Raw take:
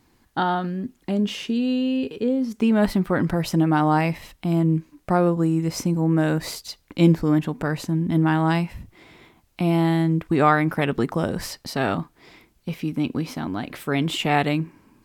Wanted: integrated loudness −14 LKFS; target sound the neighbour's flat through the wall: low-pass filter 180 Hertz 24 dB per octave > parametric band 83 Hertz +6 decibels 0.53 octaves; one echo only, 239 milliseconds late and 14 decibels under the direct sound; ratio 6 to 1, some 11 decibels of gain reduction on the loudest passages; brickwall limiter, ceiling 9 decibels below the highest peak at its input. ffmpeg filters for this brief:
ffmpeg -i in.wav -af "acompressor=threshold=-23dB:ratio=6,alimiter=limit=-23.5dB:level=0:latency=1,lowpass=frequency=180:width=0.5412,lowpass=frequency=180:width=1.3066,equalizer=frequency=83:width_type=o:width=0.53:gain=6,aecho=1:1:239:0.2,volume=24dB" out.wav

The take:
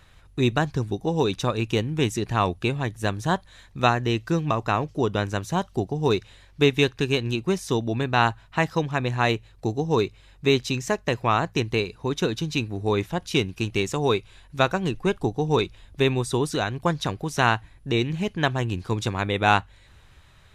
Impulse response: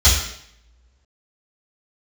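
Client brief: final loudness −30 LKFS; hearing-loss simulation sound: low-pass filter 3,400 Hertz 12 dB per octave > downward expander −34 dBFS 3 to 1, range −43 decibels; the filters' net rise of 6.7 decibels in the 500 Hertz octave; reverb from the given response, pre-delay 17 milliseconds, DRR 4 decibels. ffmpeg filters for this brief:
-filter_complex "[0:a]equalizer=frequency=500:width_type=o:gain=8.5,asplit=2[link_01][link_02];[1:a]atrim=start_sample=2205,adelay=17[link_03];[link_02][link_03]afir=irnorm=-1:irlink=0,volume=-25dB[link_04];[link_01][link_04]amix=inputs=2:normalize=0,lowpass=3400,agate=range=-43dB:threshold=-34dB:ratio=3,volume=-10dB"

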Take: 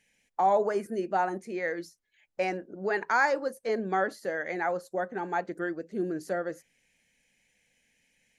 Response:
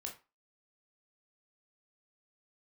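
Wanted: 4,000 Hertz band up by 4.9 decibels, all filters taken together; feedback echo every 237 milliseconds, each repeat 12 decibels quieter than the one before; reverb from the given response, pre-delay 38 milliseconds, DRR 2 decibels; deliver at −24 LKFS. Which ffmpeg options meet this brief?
-filter_complex "[0:a]equalizer=frequency=4000:width_type=o:gain=6,aecho=1:1:237|474|711:0.251|0.0628|0.0157,asplit=2[link_01][link_02];[1:a]atrim=start_sample=2205,adelay=38[link_03];[link_02][link_03]afir=irnorm=-1:irlink=0,volume=0.5dB[link_04];[link_01][link_04]amix=inputs=2:normalize=0,volume=3.5dB"

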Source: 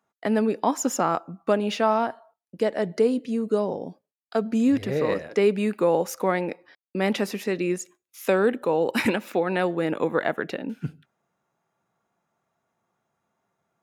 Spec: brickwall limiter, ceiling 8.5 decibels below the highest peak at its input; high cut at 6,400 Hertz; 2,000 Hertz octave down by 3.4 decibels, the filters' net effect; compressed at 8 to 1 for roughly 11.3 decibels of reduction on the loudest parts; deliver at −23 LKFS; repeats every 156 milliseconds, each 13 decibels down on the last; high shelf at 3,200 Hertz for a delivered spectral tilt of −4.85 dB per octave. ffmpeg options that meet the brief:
ffmpeg -i in.wav -af "lowpass=6400,equalizer=frequency=2000:width_type=o:gain=-6,highshelf=frequency=3200:gain=5,acompressor=threshold=-28dB:ratio=8,alimiter=limit=-24dB:level=0:latency=1,aecho=1:1:156|312|468:0.224|0.0493|0.0108,volume=12dB" out.wav

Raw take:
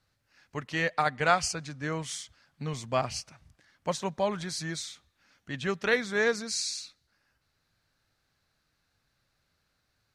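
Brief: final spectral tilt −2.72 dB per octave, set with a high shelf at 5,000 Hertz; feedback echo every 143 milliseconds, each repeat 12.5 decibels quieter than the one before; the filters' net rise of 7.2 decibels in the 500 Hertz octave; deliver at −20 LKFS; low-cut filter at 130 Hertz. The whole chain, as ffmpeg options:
ffmpeg -i in.wav -af "highpass=130,equalizer=frequency=500:width_type=o:gain=8.5,highshelf=frequency=5000:gain=7.5,aecho=1:1:143|286|429:0.237|0.0569|0.0137,volume=6dB" out.wav

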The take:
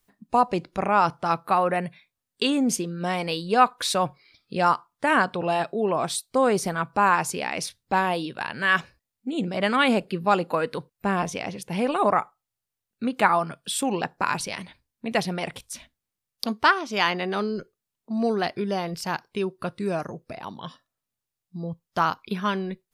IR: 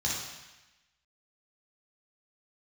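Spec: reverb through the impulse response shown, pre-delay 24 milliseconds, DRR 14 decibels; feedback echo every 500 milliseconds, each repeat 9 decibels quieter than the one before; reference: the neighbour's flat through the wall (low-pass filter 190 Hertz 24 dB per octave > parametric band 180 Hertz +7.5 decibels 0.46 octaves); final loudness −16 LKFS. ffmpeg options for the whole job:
-filter_complex "[0:a]aecho=1:1:500|1000|1500|2000:0.355|0.124|0.0435|0.0152,asplit=2[link_01][link_02];[1:a]atrim=start_sample=2205,adelay=24[link_03];[link_02][link_03]afir=irnorm=-1:irlink=0,volume=-21.5dB[link_04];[link_01][link_04]amix=inputs=2:normalize=0,lowpass=frequency=190:width=0.5412,lowpass=frequency=190:width=1.3066,equalizer=frequency=180:width_type=o:width=0.46:gain=7.5,volume=16.5dB"

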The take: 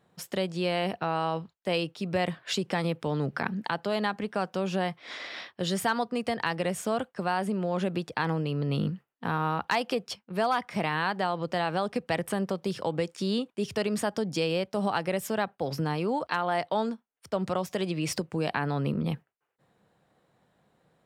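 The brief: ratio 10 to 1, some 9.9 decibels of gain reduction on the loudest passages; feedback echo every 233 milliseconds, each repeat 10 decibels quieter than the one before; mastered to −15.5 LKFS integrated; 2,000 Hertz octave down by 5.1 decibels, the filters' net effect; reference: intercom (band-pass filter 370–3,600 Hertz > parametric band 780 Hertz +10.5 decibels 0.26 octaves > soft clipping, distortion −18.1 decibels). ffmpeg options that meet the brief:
ffmpeg -i in.wav -af "equalizer=frequency=2000:width_type=o:gain=-6.5,acompressor=threshold=-34dB:ratio=10,highpass=370,lowpass=3600,equalizer=frequency=780:width_type=o:width=0.26:gain=10.5,aecho=1:1:233|466|699|932:0.316|0.101|0.0324|0.0104,asoftclip=threshold=-28dB,volume=25dB" out.wav

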